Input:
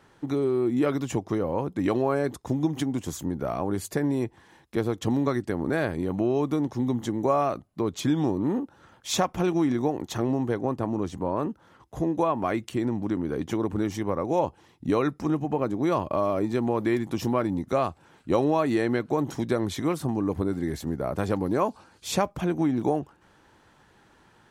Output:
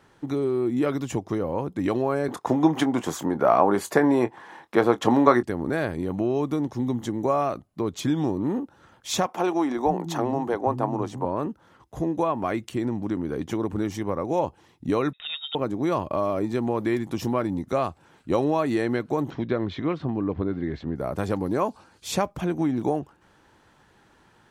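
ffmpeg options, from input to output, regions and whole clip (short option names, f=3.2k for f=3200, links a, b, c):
-filter_complex "[0:a]asettb=1/sr,asplit=3[a][b][c];[a]atrim=end=2.284[d];[b]atrim=start=2.28:end=5.43,asetpts=PTS-STARTPTS,afade=t=in:d=0.004:c=qsin,afade=t=out:st=3.146:d=0.004:c=qsin,highpass=140,equalizer=f=1k:t=o:w=2.8:g=14,asplit=2[e][f];[f]adelay=25,volume=-13.5dB[g];[e][g]amix=inputs=2:normalize=0,atrim=end_sample=138915[h];[c]atrim=start=5.426[i];[d][h]acrossfade=d=0.004:c1=hsin:c2=qsin[j];[j][i]acrossfade=d=0.004:c1=qsin:c2=hsin,asettb=1/sr,asplit=3[k][l][m];[k]atrim=end=9.264[n];[l]atrim=start=9.26:end=11.25,asetpts=PTS-STARTPTS,afade=t=in:d=0.004:c=qsin,afade=t=out:st=1.986:d=0.004:c=qsin,equalizer=f=840:t=o:w=1.1:g=9,acrossover=split=220[o][p];[o]adelay=510[q];[q][p]amix=inputs=2:normalize=0,atrim=end_sample=87759[r];[m]atrim=start=11.246[s];[n][r]acrossfade=d=0.004:c1=hsin:c2=qsin[t];[t][s]acrossfade=d=0.004:c1=qsin:c2=hsin,asettb=1/sr,asplit=3[u][v][w];[u]atrim=end=15.134[x];[v]atrim=start=15.13:end=15.55,asetpts=PTS-STARTPTS,afade=t=in:d=0.004:c=qsin,afade=t=out:st=0.416:d=0.004:c=qsin,tiltshelf=f=1.1k:g=-8.5,aecho=1:1:1.5:0.36,atrim=end_sample=18522,lowpass=f=3.3k:t=q:w=0.5098,lowpass=f=3.3k:t=q:w=0.6013,lowpass=f=3.3k:t=q:w=0.9,lowpass=f=3.3k:t=q:w=2.563,afreqshift=-3900[y];[w]atrim=start=15.546[z];[x][y]acrossfade=d=0.004:c1=hsin:c2=qsin[aa];[aa][z]acrossfade=d=0.004:c1=qsin:c2=hsin,asettb=1/sr,asplit=3[ab][ac][ad];[ab]atrim=end=19.304[ae];[ac]atrim=start=19.3:end=20.96,asetpts=PTS-STARTPTS,afade=t=in:d=0.004:c=qsin,afade=t=out:st=1.656:d=0.004:c=qsin,lowpass=f=3.7k:w=0.5412,lowpass=f=3.7k:w=1.3066,equalizer=f=840:t=o:w=0.23:g=-4[af];[ad]atrim=start=20.956[ag];[ae][af]acrossfade=d=0.004:c1=hsin:c2=qsin[ah];[ah][ag]acrossfade=d=0.004:c1=qsin:c2=hsin"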